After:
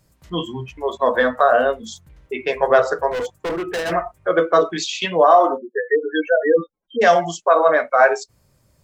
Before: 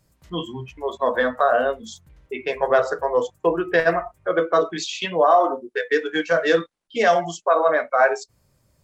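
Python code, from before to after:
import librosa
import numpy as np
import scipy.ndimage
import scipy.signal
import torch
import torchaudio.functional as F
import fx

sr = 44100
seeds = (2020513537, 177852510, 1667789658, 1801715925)

y = fx.overload_stage(x, sr, gain_db=25.0, at=(3.11, 3.92))
y = fx.spec_gate(y, sr, threshold_db=-10, keep='strong', at=(5.57, 7.01), fade=0.02)
y = y * 10.0 ** (3.5 / 20.0)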